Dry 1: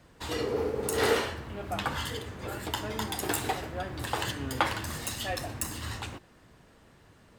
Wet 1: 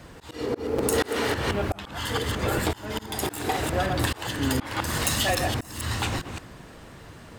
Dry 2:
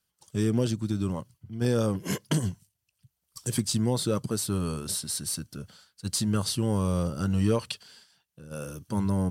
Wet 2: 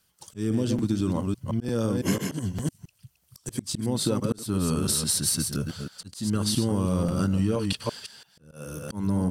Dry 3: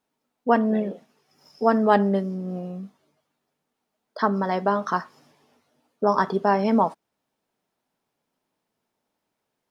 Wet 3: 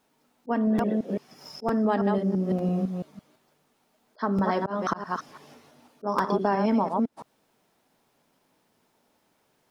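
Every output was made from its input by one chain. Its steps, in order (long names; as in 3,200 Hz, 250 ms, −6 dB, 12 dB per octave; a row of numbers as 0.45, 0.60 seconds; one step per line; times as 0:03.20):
delay that plays each chunk backwards 168 ms, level −7 dB
dynamic equaliser 270 Hz, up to +6 dB, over −41 dBFS, Q 2.7
volume swells 520 ms
downward compressor 6 to 1, threshold −32 dBFS
regular buffer underruns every 0.90 s, samples 256, repeat, from 0:00.78
loudness normalisation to −27 LKFS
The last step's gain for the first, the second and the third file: +12.0, +10.5, +10.0 decibels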